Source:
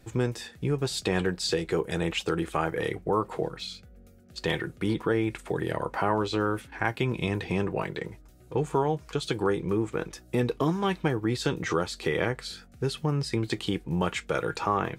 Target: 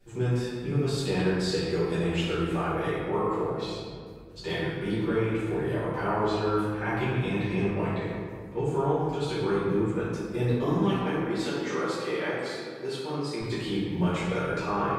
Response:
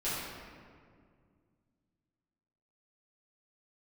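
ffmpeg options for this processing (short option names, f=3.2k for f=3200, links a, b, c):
-filter_complex "[0:a]asettb=1/sr,asplit=3[a][b][c];[a]atrim=end=11.024[d];[b]atrim=start=11.02:end=13.41,asetpts=PTS-STARTPTS,afade=t=in:d=0.004:c=qsin,afade=t=out:st=2.386:d=0.004:c=qsin,highpass=280[e];[c]atrim=start=13.406[f];[d][e]acrossfade=d=0.004:c1=hsin:c2=qsin[g];[g][f]acrossfade=d=0.004:c1=qsin:c2=hsin[h];[1:a]atrim=start_sample=2205[i];[h][i]afir=irnorm=-1:irlink=0,volume=-7.5dB"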